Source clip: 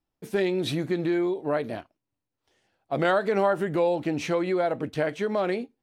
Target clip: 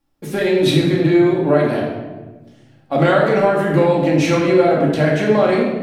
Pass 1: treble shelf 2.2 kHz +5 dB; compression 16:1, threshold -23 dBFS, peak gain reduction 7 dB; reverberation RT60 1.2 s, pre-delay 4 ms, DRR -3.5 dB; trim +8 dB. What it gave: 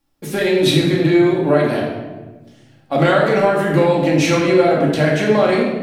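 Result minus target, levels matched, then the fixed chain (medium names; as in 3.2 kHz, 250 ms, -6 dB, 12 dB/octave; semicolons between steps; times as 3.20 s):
4 kHz band +3.0 dB
compression 16:1, threshold -23 dBFS, peak gain reduction 6.5 dB; reverberation RT60 1.2 s, pre-delay 4 ms, DRR -3.5 dB; trim +8 dB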